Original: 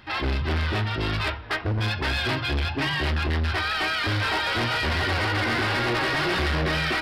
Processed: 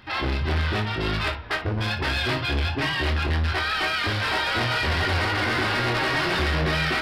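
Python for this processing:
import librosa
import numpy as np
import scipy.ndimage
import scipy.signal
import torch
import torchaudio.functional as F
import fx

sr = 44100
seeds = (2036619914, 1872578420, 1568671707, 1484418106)

y = fx.room_early_taps(x, sr, ms=(24, 57), db=(-7.5, -13.0))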